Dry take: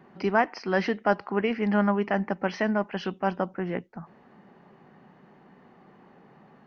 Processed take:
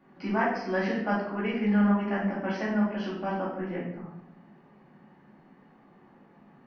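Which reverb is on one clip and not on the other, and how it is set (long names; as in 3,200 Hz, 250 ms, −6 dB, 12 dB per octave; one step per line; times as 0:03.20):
rectangular room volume 220 cubic metres, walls mixed, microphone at 2.4 metres
level −11 dB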